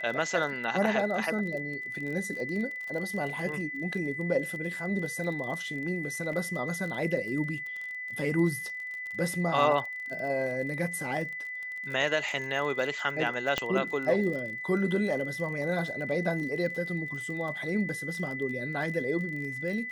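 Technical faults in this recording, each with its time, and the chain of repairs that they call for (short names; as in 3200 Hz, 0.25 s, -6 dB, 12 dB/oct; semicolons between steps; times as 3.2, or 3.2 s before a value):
crackle 32/s -36 dBFS
tone 2000 Hz -35 dBFS
6.33 gap 2.7 ms
13.58 pop -12 dBFS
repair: de-click; notch 2000 Hz, Q 30; interpolate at 6.33, 2.7 ms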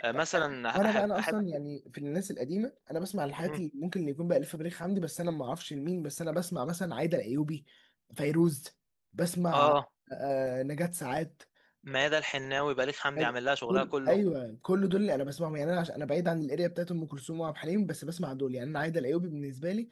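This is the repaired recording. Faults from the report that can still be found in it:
none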